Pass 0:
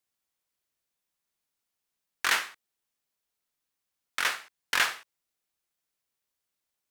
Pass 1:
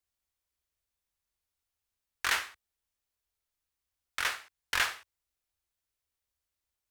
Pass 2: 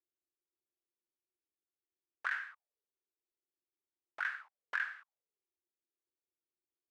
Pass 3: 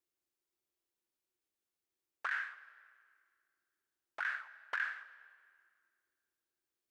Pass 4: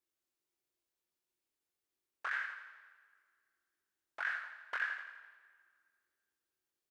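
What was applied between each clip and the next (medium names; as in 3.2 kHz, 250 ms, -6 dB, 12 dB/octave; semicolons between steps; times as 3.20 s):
resonant low shelf 110 Hz +12.5 dB, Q 1.5; trim -3.5 dB
auto-wah 350–1600 Hz, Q 7.4, up, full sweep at -31 dBFS; compression, threshold -40 dBFS, peak gain reduction 11 dB; trim +7.5 dB
peak limiter -29 dBFS, peak gain reduction 8.5 dB; on a send at -17 dB: reverberation RT60 2.0 s, pre-delay 90 ms; on the sum: trim +3.5 dB
chorus 1.6 Hz, delay 20 ms, depth 4.5 ms; feedback delay 84 ms, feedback 57%, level -10 dB; trim +2.5 dB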